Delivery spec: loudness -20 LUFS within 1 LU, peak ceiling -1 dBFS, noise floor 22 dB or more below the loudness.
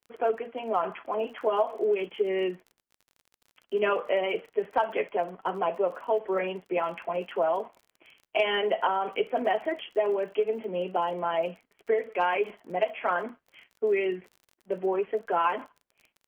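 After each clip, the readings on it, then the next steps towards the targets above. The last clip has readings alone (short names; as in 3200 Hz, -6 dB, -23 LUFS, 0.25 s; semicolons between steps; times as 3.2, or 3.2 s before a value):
ticks 34/s; loudness -29.0 LUFS; peak -13.5 dBFS; loudness target -20.0 LUFS
-> de-click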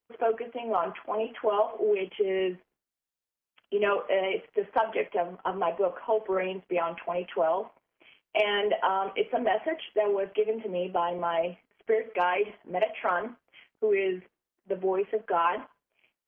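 ticks 0/s; loudness -29.0 LUFS; peak -13.5 dBFS; loudness target -20.0 LUFS
-> gain +9 dB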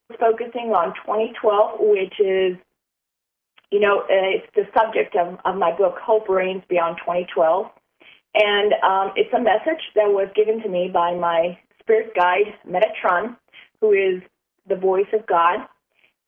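loudness -20.0 LUFS; peak -4.5 dBFS; noise floor -82 dBFS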